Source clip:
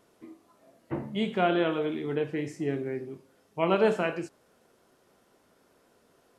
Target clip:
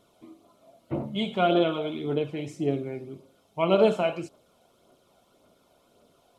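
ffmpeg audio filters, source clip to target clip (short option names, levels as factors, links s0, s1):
-af "superequalizer=8b=1.78:11b=0.282:13b=1.78,aphaser=in_gain=1:out_gain=1:delay=1.4:decay=0.38:speed=1.8:type=triangular"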